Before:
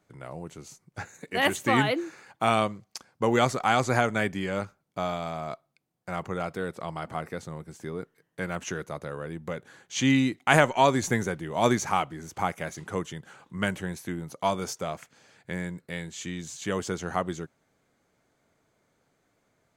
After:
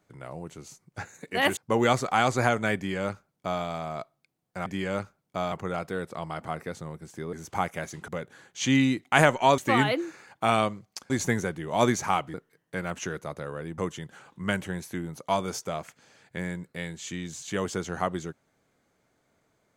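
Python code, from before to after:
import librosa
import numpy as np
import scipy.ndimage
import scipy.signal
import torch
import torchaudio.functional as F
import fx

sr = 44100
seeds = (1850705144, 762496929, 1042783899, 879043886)

y = fx.edit(x, sr, fx.move(start_s=1.57, length_s=1.52, to_s=10.93),
    fx.duplicate(start_s=4.28, length_s=0.86, to_s=6.18),
    fx.swap(start_s=7.99, length_s=1.44, other_s=12.17, other_length_s=0.75), tone=tone)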